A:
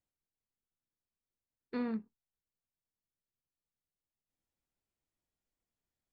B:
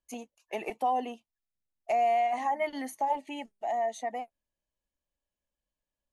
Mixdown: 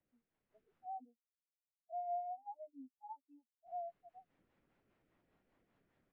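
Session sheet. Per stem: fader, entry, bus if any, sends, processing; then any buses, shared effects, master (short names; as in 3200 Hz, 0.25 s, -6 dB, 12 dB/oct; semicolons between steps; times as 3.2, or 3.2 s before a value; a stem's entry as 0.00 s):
-0.5 dB, 0.00 s, muted 0.86–3.66, no send, three-band squash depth 40%
-7.5 dB, 0.00 s, no send, soft clip -35 dBFS, distortion -6 dB; spectral expander 4:1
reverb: off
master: rotary speaker horn 5 Hz; AGC gain up to 9.5 dB; LPF 2900 Hz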